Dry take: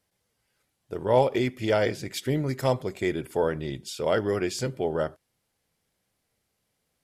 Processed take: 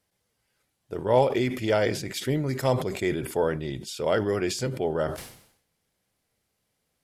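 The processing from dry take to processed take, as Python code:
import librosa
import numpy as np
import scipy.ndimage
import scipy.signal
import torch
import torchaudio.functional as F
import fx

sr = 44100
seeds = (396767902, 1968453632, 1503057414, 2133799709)

y = fx.sustainer(x, sr, db_per_s=85.0)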